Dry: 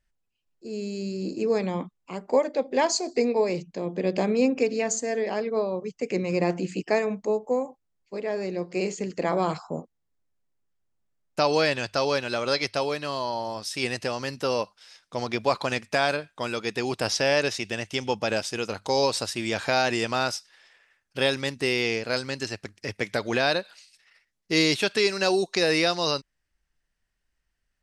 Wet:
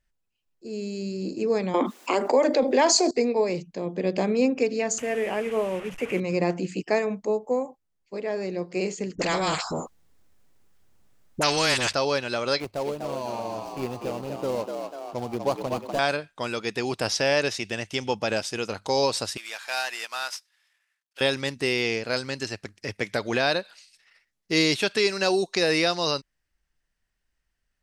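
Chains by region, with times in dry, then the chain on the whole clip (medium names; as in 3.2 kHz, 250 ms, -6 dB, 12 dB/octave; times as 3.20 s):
1.74–3.11 s: steep high-pass 230 Hz 72 dB/octave + level flattener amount 70%
4.98–6.20 s: one-bit delta coder 64 kbps, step -32.5 dBFS + resonant high shelf 3.4 kHz -7 dB, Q 3
9.15–11.93 s: phase dispersion highs, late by 43 ms, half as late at 780 Hz + spectrum-flattening compressor 2:1
12.60–15.99 s: median filter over 25 samples + frequency-shifting echo 246 ms, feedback 55%, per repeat +74 Hz, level -5 dB + dynamic bell 1.6 kHz, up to -6 dB, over -43 dBFS, Q 0.97
19.37–21.21 s: CVSD coder 64 kbps + high-pass 1.1 kHz + upward expansion, over -50 dBFS
whole clip: none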